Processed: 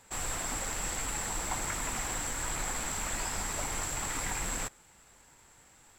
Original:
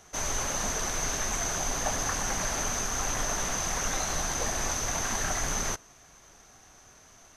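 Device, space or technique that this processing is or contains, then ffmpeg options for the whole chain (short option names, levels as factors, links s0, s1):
nightcore: -af "asetrate=54243,aresample=44100,volume=0.596"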